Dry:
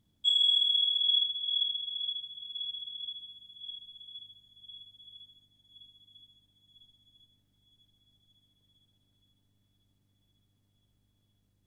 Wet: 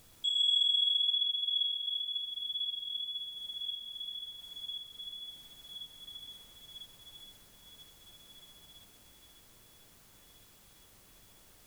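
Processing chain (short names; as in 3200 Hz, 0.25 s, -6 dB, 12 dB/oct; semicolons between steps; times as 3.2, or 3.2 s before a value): high shelf 2100 Hz +10.5 dB; added noise pink -65 dBFS; high shelf 5200 Hz +8.5 dB; compressor 2:1, threshold -46 dBFS, peak gain reduction 18 dB; lo-fi delay 0.124 s, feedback 35%, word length 11-bit, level -5 dB; gain +1 dB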